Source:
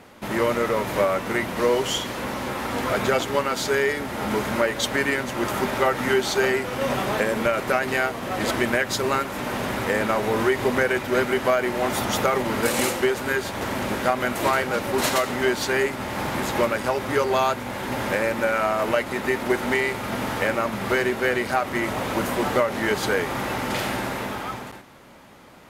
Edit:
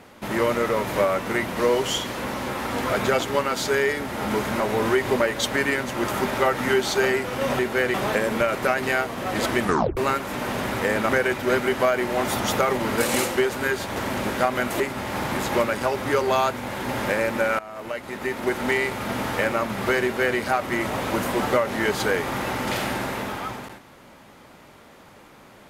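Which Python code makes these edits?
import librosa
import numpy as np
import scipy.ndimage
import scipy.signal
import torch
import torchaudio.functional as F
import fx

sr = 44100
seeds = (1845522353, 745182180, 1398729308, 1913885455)

y = fx.edit(x, sr, fx.tape_stop(start_s=8.67, length_s=0.35),
    fx.move(start_s=10.14, length_s=0.6, to_s=4.6),
    fx.cut(start_s=14.45, length_s=1.38),
    fx.fade_in_from(start_s=18.62, length_s=1.17, floor_db=-20.0),
    fx.duplicate(start_s=21.06, length_s=0.35, to_s=6.99), tone=tone)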